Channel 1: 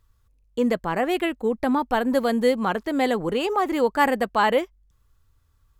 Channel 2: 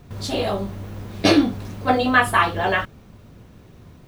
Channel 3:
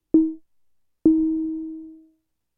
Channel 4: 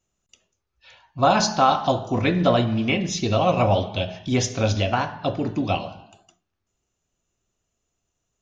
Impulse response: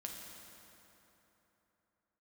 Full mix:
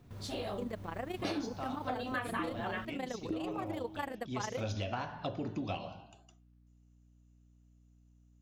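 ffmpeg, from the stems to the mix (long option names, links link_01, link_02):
-filter_complex "[0:a]tremolo=f=27:d=0.788,volume=-12dB[link_01];[1:a]volume=-13.5dB[link_02];[2:a]adelay=2250,volume=-16dB[link_03];[3:a]asoftclip=type=tanh:threshold=-11dB,volume=-8dB,afade=type=in:start_time=4.2:duration=0.55:silence=0.251189[link_04];[link_01][link_02][link_03][link_04]amix=inputs=4:normalize=0,aeval=exprs='val(0)+0.000794*(sin(2*PI*60*n/s)+sin(2*PI*2*60*n/s)/2+sin(2*PI*3*60*n/s)/3+sin(2*PI*4*60*n/s)/4+sin(2*PI*5*60*n/s)/5)':channel_layout=same,acompressor=threshold=-35dB:ratio=3"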